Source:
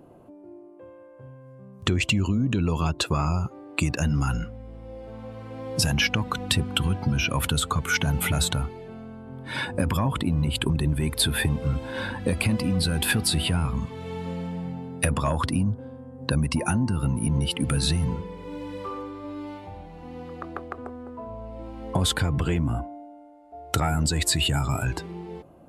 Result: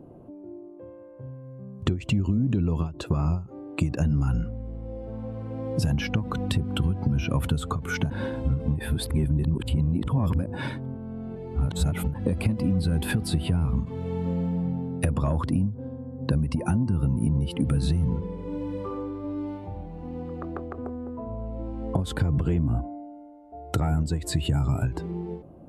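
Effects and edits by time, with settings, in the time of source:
8.1–12.14 reverse
whole clip: tilt shelf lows +8 dB, about 820 Hz; compressor, threshold -18 dBFS; ending taper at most 150 dB/s; gain -1.5 dB

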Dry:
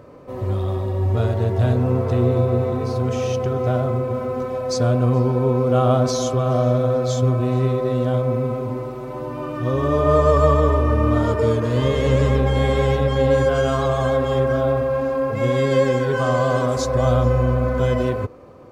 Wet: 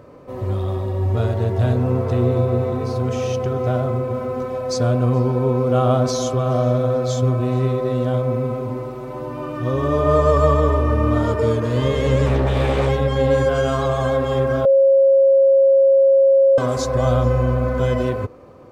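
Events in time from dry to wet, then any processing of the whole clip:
12.26–12.89 Doppler distortion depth 0.48 ms
14.65–16.58 bleep 543 Hz -9.5 dBFS

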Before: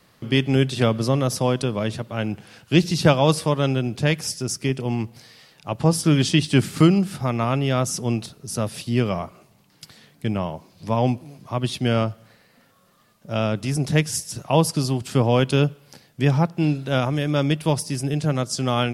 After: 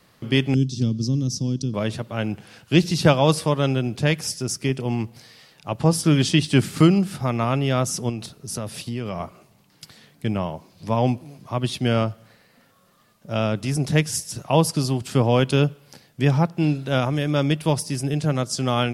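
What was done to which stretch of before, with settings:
0.54–1.74 EQ curve 280 Hz 0 dB, 650 Hz -25 dB, 2000 Hz -26 dB, 5800 Hz +4 dB, 9900 Hz -15 dB
8.09–9.2 compressor, threshold -24 dBFS

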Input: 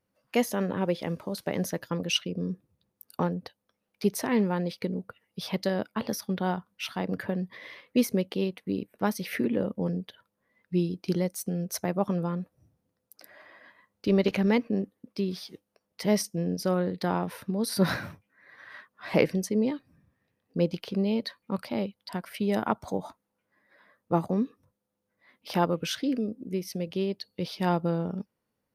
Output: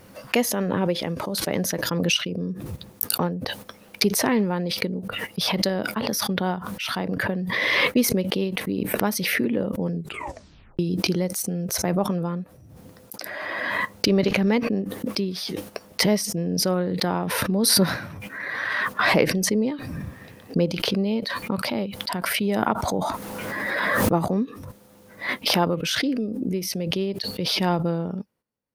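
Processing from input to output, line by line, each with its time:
9.93 tape stop 0.86 s
22.91–24.15 sustainer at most 21 dB/s
whole clip: gate -59 dBFS, range -11 dB; backwards sustainer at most 20 dB/s; gain +2.5 dB

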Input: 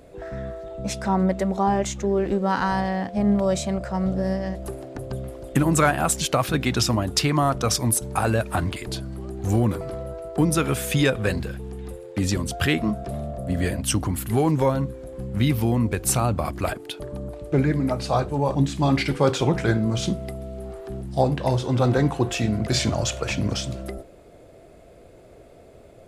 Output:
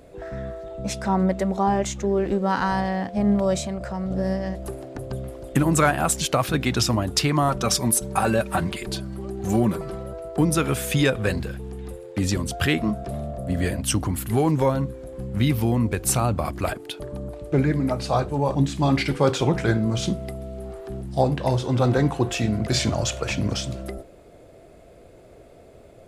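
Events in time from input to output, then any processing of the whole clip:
3.6–4.11 compressor 4:1, threshold -25 dBFS
7.48–10.13 comb 5.2 ms, depth 58%

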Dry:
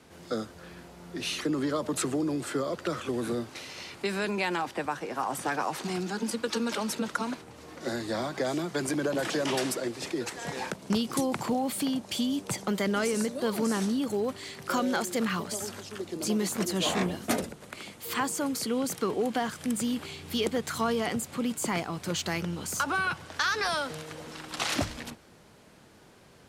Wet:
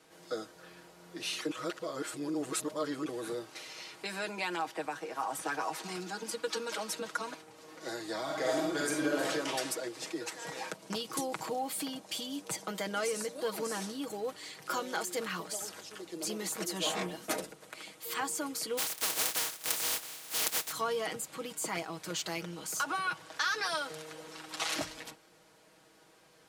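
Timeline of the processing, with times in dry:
1.51–3.06 reverse
8.23–9.28 reverb throw, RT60 0.83 s, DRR -2 dB
18.77–20.71 spectral contrast lowered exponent 0.15
whole clip: tone controls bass -11 dB, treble +2 dB; comb 6.3 ms; gain -6 dB

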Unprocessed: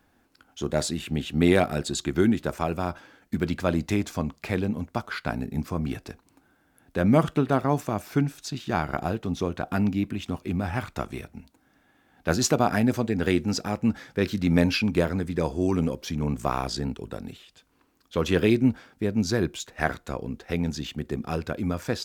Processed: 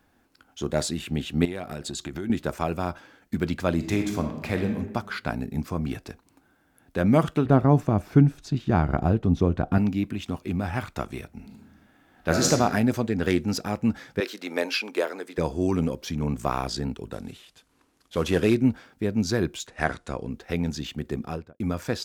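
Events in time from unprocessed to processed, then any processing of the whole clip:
1.45–2.3 compressor, threshold -29 dBFS
3.74–4.74 reverb throw, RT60 0.98 s, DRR 4.5 dB
7.45–9.78 tilt -3 dB/oct
11.33–12.51 reverb throw, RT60 1.1 s, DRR 0 dB
13.07–13.62 self-modulated delay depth 0.062 ms
14.2–15.38 HPF 370 Hz 24 dB/oct
17.12–18.55 CVSD 64 kbps
19.67–20.3 careless resampling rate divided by 2×, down none, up filtered
21.18–21.6 studio fade out

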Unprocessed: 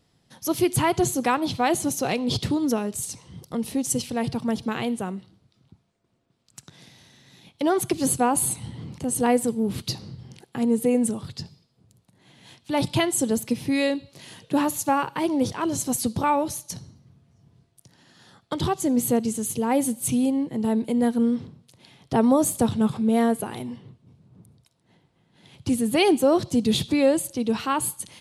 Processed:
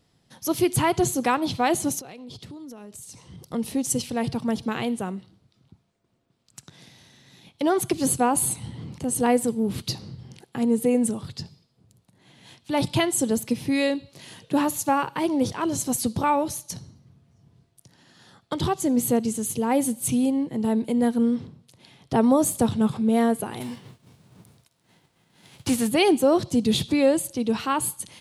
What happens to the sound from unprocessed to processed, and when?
1.99–3.41 compressor 10:1, threshold -38 dBFS
23.6–25.87 spectral whitening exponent 0.6

